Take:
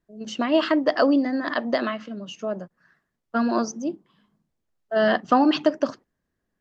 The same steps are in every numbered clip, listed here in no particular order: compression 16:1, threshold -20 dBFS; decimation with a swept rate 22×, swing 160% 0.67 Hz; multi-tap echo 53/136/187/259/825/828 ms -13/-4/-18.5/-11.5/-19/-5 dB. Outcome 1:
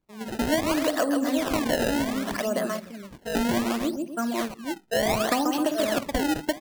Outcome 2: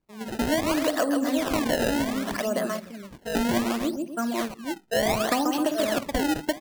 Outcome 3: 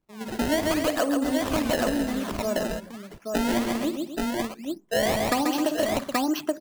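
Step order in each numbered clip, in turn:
multi-tap echo > compression > decimation with a swept rate; multi-tap echo > decimation with a swept rate > compression; decimation with a swept rate > multi-tap echo > compression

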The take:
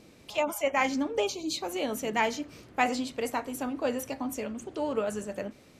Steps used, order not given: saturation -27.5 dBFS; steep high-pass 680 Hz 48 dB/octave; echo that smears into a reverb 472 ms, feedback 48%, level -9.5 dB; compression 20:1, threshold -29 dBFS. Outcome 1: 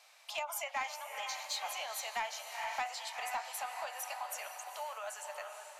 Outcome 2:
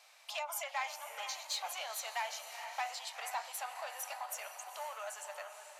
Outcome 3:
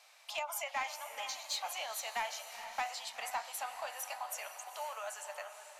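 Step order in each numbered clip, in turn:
echo that smears into a reverb > compression > steep high-pass > saturation; compression > echo that smears into a reverb > saturation > steep high-pass; compression > steep high-pass > saturation > echo that smears into a reverb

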